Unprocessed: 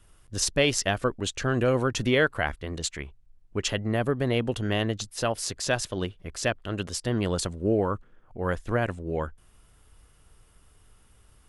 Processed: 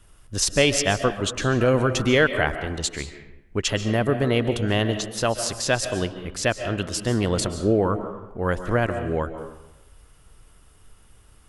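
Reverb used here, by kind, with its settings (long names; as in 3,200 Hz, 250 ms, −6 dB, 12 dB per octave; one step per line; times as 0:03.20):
comb and all-pass reverb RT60 0.9 s, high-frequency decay 0.65×, pre-delay 100 ms, DRR 9 dB
level +4 dB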